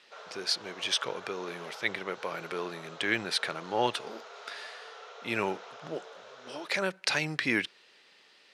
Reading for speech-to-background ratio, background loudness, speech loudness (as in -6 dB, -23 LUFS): 15.0 dB, -47.5 LUFS, -32.5 LUFS